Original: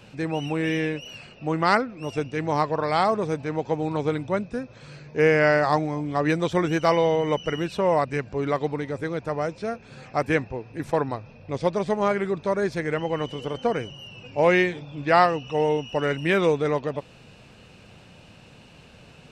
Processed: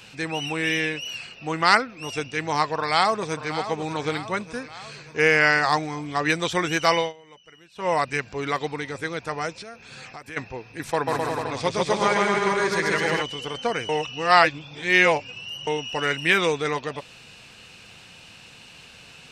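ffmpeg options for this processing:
ffmpeg -i in.wav -filter_complex "[0:a]asplit=2[link_01][link_02];[link_02]afade=type=in:start_time=2.63:duration=0.01,afade=type=out:start_time=3.5:duration=0.01,aecho=0:1:590|1180|1770|2360|2950|3540:0.266073|0.14634|0.0804869|0.0442678|0.0243473|0.013391[link_03];[link_01][link_03]amix=inputs=2:normalize=0,asplit=3[link_04][link_05][link_06];[link_04]afade=type=out:start_time=9.52:duration=0.02[link_07];[link_05]acompressor=threshold=-35dB:ratio=12:attack=3.2:release=140:knee=1:detection=peak,afade=type=in:start_time=9.52:duration=0.02,afade=type=out:start_time=10.36:duration=0.02[link_08];[link_06]afade=type=in:start_time=10.36:duration=0.02[link_09];[link_07][link_08][link_09]amix=inputs=3:normalize=0,asplit=3[link_10][link_11][link_12];[link_10]afade=type=out:start_time=11.06:duration=0.02[link_13];[link_11]aecho=1:1:140|259|360.2|446.1|519.2:0.794|0.631|0.501|0.398|0.316,afade=type=in:start_time=11.06:duration=0.02,afade=type=out:start_time=13.21:duration=0.02[link_14];[link_12]afade=type=in:start_time=13.21:duration=0.02[link_15];[link_13][link_14][link_15]amix=inputs=3:normalize=0,asplit=5[link_16][link_17][link_18][link_19][link_20];[link_16]atrim=end=7.13,asetpts=PTS-STARTPTS,afade=type=out:start_time=6.99:duration=0.14:silence=0.0630957[link_21];[link_17]atrim=start=7.13:end=7.75,asetpts=PTS-STARTPTS,volume=-24dB[link_22];[link_18]atrim=start=7.75:end=13.892,asetpts=PTS-STARTPTS,afade=type=in:duration=0.14:silence=0.0630957[link_23];[link_19]atrim=start=13.888:end=15.672,asetpts=PTS-STARTPTS,areverse[link_24];[link_20]atrim=start=15.668[link_25];[link_21][link_22][link_23]concat=n=3:v=0:a=1[link_26];[link_26][link_24]acrossfade=duration=0.004:curve1=hsin:curve2=hsin[link_27];[link_27][link_25]acrossfade=duration=0.004:curve1=hsin:curve2=hsin,tiltshelf=frequency=1100:gain=-7.5,bandreject=frequency=590:width=12,volume=2.5dB" out.wav

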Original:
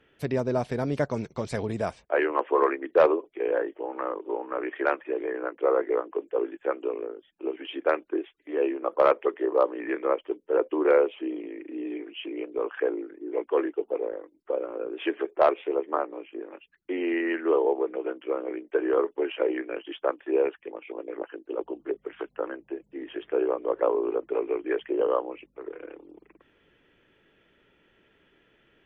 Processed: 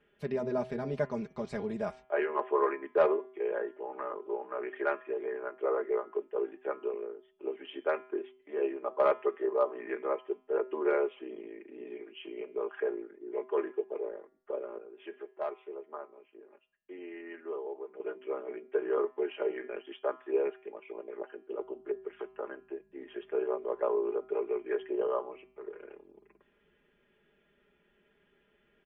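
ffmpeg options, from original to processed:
ffmpeg -i in.wav -filter_complex "[0:a]asplit=3[link_01][link_02][link_03];[link_01]atrim=end=14.782[link_04];[link_02]atrim=start=14.778:end=18.002,asetpts=PTS-STARTPTS,volume=-10dB[link_05];[link_03]atrim=start=17.998[link_06];[link_04][link_05]acrossfade=duration=0.004:curve1=hsin:curve2=hsin[link_07];[link_07][link_06]acrossfade=duration=0.004:curve1=hsin:curve2=hsin,lowpass=frequency=2900:poles=1,aecho=1:1:4.9:0.78,bandreject=frequency=127.9:width_type=h:width=4,bandreject=frequency=255.8:width_type=h:width=4,bandreject=frequency=383.7:width_type=h:width=4,bandreject=frequency=511.6:width_type=h:width=4,bandreject=frequency=639.5:width_type=h:width=4,bandreject=frequency=767.4:width_type=h:width=4,bandreject=frequency=895.3:width_type=h:width=4,bandreject=frequency=1023.2:width_type=h:width=4,bandreject=frequency=1151.1:width_type=h:width=4,bandreject=frequency=1279:width_type=h:width=4,bandreject=frequency=1406.9:width_type=h:width=4,bandreject=frequency=1534.8:width_type=h:width=4,bandreject=frequency=1662.7:width_type=h:width=4,bandreject=frequency=1790.6:width_type=h:width=4,bandreject=frequency=1918.5:width_type=h:width=4,bandreject=frequency=2046.4:width_type=h:width=4,bandreject=frequency=2174.3:width_type=h:width=4,bandreject=frequency=2302.2:width_type=h:width=4,bandreject=frequency=2430.1:width_type=h:width=4,bandreject=frequency=2558:width_type=h:width=4,bandreject=frequency=2685.9:width_type=h:width=4,bandreject=frequency=2813.8:width_type=h:width=4,bandreject=frequency=2941.7:width_type=h:width=4,bandreject=frequency=3069.6:width_type=h:width=4,bandreject=frequency=3197.5:width_type=h:width=4,bandreject=frequency=3325.4:width_type=h:width=4,bandreject=frequency=3453.3:width_type=h:width=4,bandreject=frequency=3581.2:width_type=h:width=4,volume=-7.5dB" out.wav

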